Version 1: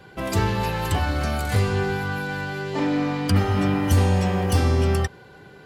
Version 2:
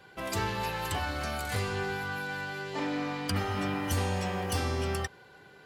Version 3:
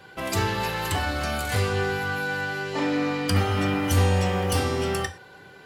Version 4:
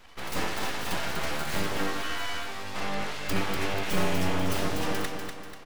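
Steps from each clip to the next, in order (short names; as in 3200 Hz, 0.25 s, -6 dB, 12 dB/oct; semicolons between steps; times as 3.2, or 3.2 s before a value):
low shelf 440 Hz -9 dB; gain -4.5 dB
non-linear reverb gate 0.14 s falling, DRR 9 dB; gain +6 dB
tracing distortion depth 0.28 ms; on a send: feedback echo 0.244 s, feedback 44%, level -6 dB; on the sum: full-wave rectifier; gain -3 dB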